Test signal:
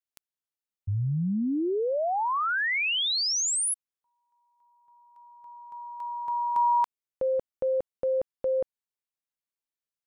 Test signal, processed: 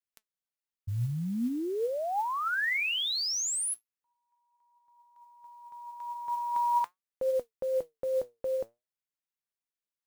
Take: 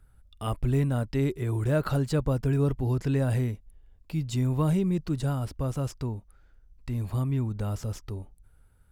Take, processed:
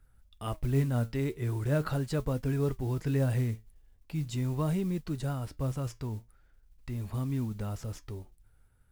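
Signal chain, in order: peaking EQ 1.9 kHz +2.5 dB 0.77 oct; flange 0.41 Hz, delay 3.6 ms, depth 5.8 ms, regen +77%; modulation noise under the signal 27 dB

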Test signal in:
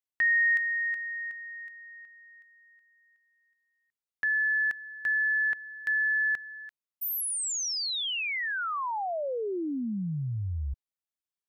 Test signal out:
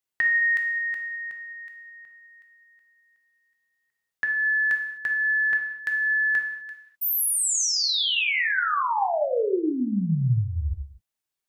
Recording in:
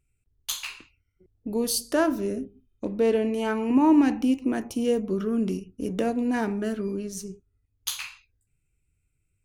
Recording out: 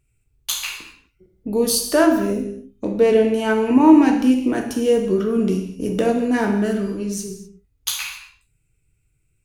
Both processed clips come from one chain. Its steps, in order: gated-style reverb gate 280 ms falling, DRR 2.5 dB; trim +5.5 dB

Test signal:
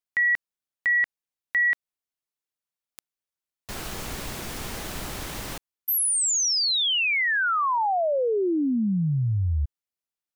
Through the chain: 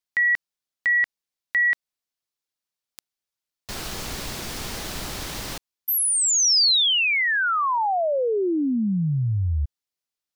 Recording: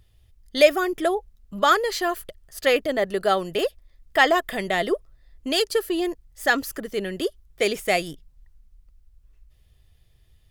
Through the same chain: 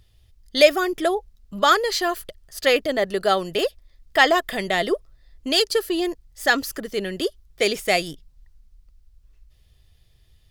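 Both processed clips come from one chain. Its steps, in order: peaking EQ 4.7 kHz +5 dB 1.1 oct; trim +1 dB

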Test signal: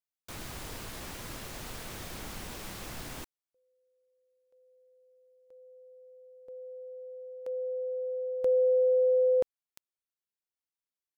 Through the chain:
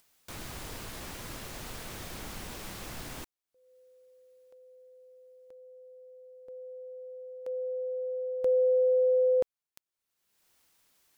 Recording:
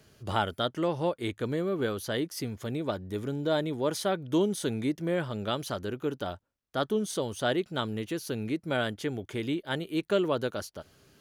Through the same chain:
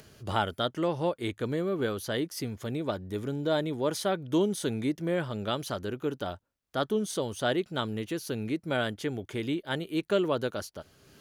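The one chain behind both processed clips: upward compressor, threshold -48 dBFS

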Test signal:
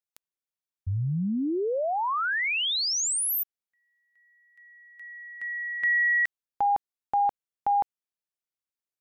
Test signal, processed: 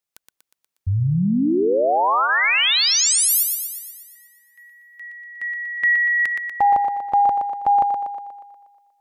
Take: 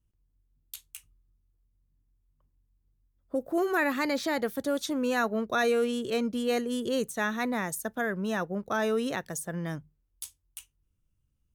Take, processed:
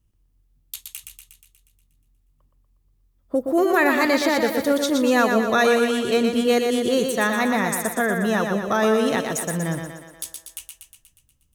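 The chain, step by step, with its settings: band-stop 1.5 kHz, Q 19; on a send: thinning echo 120 ms, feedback 59%, high-pass 190 Hz, level -5 dB; on the sum: trim +8 dB

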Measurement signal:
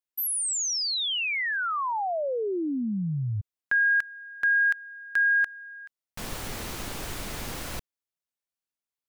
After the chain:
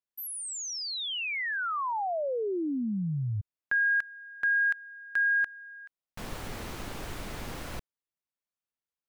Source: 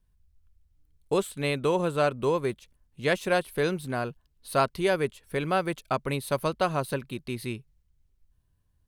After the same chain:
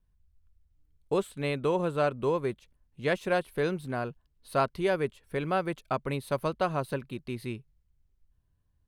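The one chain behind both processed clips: treble shelf 3.6 kHz -8 dB; trim -2 dB

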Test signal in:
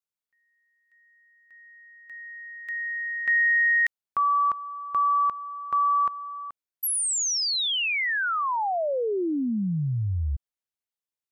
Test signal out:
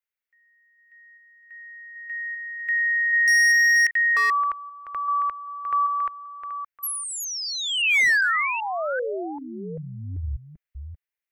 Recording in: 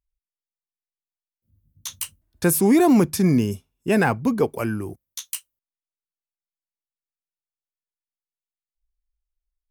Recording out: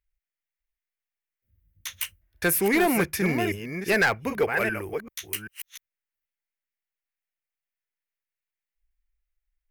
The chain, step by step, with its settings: chunks repeated in reverse 391 ms, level -8 dB; graphic EQ 125/250/1000/2000/4000/8000 Hz -11/-12/-7/+10/-6/-9 dB; hard clipper -18.5 dBFS; trim +2.5 dB

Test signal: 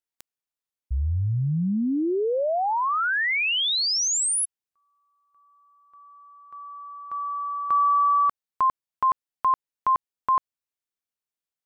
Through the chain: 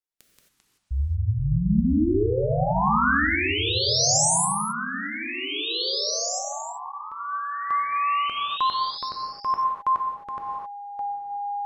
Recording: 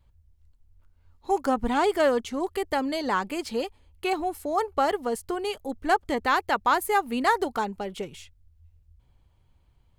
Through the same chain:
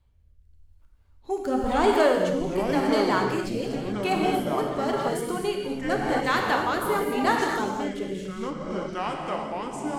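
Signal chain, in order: gated-style reverb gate 290 ms flat, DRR 0 dB; rotary cabinet horn 0.9 Hz; ever faster or slower copies 94 ms, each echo -6 st, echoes 2, each echo -6 dB

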